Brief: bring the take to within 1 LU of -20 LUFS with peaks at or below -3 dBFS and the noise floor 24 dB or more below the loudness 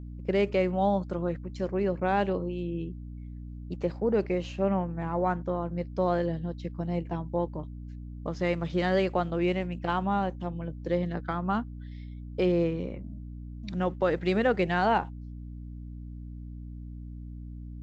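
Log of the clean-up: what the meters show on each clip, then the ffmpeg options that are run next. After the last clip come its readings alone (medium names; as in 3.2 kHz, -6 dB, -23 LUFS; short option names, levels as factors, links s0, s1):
hum 60 Hz; highest harmonic 300 Hz; hum level -38 dBFS; loudness -29.5 LUFS; peak level -13.5 dBFS; loudness target -20.0 LUFS
-> -af "bandreject=f=60:t=h:w=4,bandreject=f=120:t=h:w=4,bandreject=f=180:t=h:w=4,bandreject=f=240:t=h:w=4,bandreject=f=300:t=h:w=4"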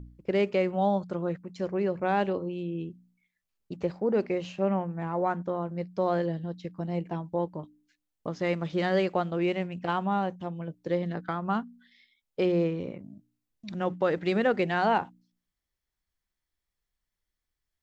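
hum not found; loudness -29.5 LUFS; peak level -13.5 dBFS; loudness target -20.0 LUFS
-> -af "volume=2.99"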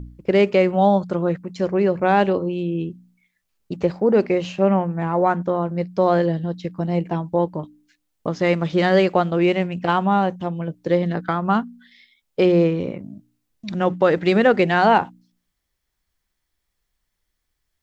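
loudness -20.0 LUFS; peak level -4.0 dBFS; noise floor -76 dBFS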